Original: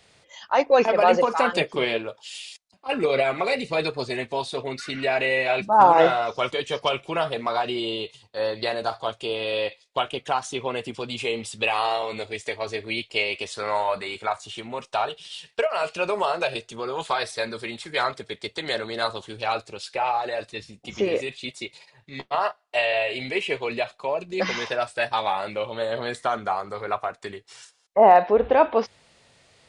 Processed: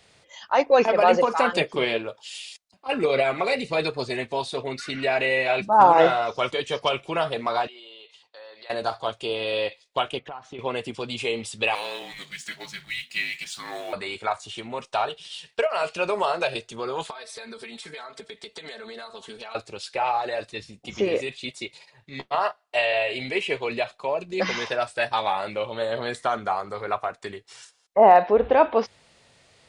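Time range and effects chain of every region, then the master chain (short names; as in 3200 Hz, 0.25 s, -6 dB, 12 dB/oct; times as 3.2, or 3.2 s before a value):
7.67–8.7 Bessel high-pass 830 Hz + compressor 4:1, threshold -43 dBFS + air absorption 78 m
10.19–10.59 LPF 2300 Hz + notch 1600 Hz, Q 23 + compressor 4:1, threshold -35 dBFS
11.75–13.93 G.711 law mismatch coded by mu + passive tone stack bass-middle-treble 10-0-10 + frequency shift -250 Hz
17.1–19.55 low shelf 170 Hz -7.5 dB + comb 4.5 ms, depth 78% + compressor 12:1, threshold -35 dBFS
whole clip: dry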